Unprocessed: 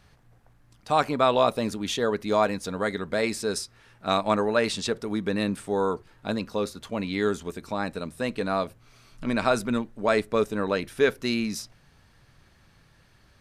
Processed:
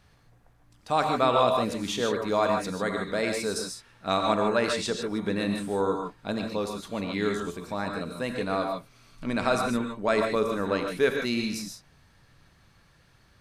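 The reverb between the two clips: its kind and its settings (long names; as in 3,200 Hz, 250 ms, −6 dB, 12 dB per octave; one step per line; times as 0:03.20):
reverb whose tail is shaped and stops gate 170 ms rising, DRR 3 dB
level −2.5 dB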